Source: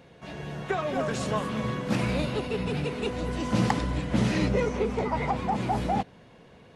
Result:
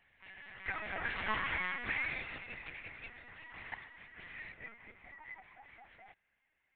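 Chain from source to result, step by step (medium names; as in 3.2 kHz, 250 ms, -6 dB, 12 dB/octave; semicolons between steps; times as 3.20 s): Doppler pass-by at 1.46 s, 12 m/s, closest 3.8 m; band-pass filter 2 kHz, Q 4.6; LPC vocoder at 8 kHz pitch kept; trim +11.5 dB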